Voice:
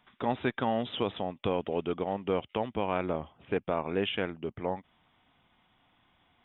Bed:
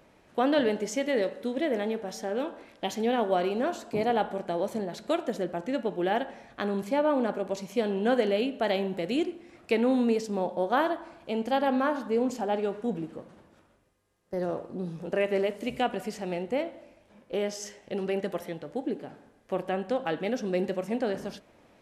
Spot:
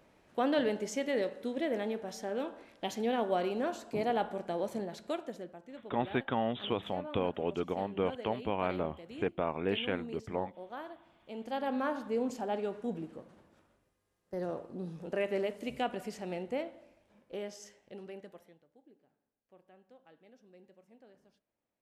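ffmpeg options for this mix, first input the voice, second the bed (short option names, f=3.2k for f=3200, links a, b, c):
-filter_complex "[0:a]adelay=5700,volume=-2.5dB[a];[1:a]volume=7.5dB,afade=t=out:st=4.81:d=0.79:silence=0.211349,afade=t=in:st=11.12:d=0.79:silence=0.237137,afade=t=out:st=16.46:d=2.22:silence=0.0595662[b];[a][b]amix=inputs=2:normalize=0"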